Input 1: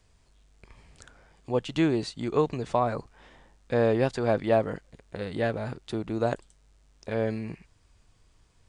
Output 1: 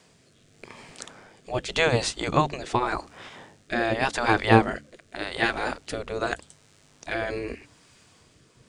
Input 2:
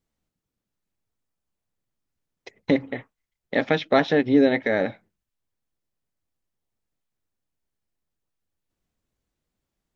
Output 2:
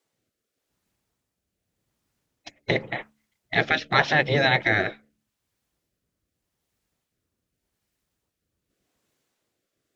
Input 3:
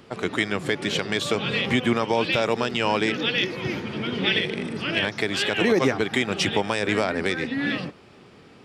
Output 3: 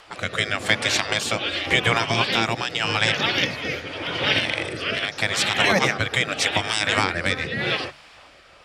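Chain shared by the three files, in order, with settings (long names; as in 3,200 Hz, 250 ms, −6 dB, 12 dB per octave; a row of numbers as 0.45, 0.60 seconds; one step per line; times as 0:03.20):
rotating-speaker cabinet horn 0.85 Hz
gate on every frequency bin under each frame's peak −10 dB weak
hum removal 72.5 Hz, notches 4
normalise the peak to −3 dBFS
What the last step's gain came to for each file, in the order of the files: +14.5, +11.5, +10.5 decibels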